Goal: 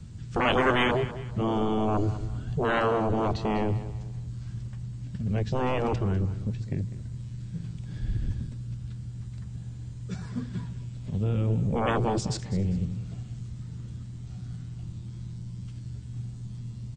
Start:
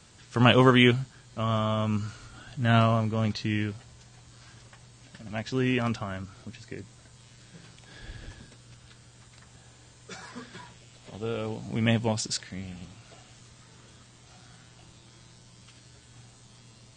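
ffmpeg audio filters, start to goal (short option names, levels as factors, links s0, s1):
-filter_complex "[0:a]asettb=1/sr,asplit=3[s0][s1][s2];[s0]atrim=end=11.244[s3];[s1]atrim=start=11.24:end=11.96,asetpts=PTS-STARTPTS,afade=t=in:d=0.004:c=qsin,afade=t=out:st=0.716:d=0.004:c=qsin,equalizer=f=4400:w=2.7:g=-8[s4];[s2]atrim=start=11.956[s5];[s3][s4]acrossfade=d=0.004:c1=hsin:c2=qsin[s6];[s6][s5]acrossfade=d=0.004:c1=qsin:c2=hsin,acrossover=split=220[s7][s8];[s7]aeval=exprs='0.15*sin(PI/2*10*val(0)/0.15)':c=same[s9];[s9][s8]amix=inputs=2:normalize=0,aecho=1:1:199|398|597:0.188|0.064|0.0218,volume=0.501"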